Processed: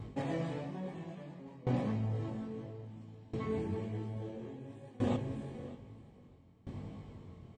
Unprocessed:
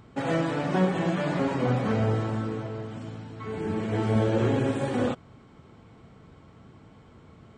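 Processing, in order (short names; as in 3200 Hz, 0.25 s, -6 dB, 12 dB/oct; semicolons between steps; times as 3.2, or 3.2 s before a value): on a send: feedback echo 0.606 s, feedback 35%, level -18.5 dB; on the sum: chorus 1 Hz, delay 19 ms, depth 3.8 ms; low shelf 340 Hz +7 dB; reverse; compressor 5:1, threshold -35 dBFS, peak gain reduction 16 dB; reverse; bell 1400 Hz -14.5 dB 0.23 oct; dB-ramp tremolo decaying 0.6 Hz, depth 22 dB; gain +6 dB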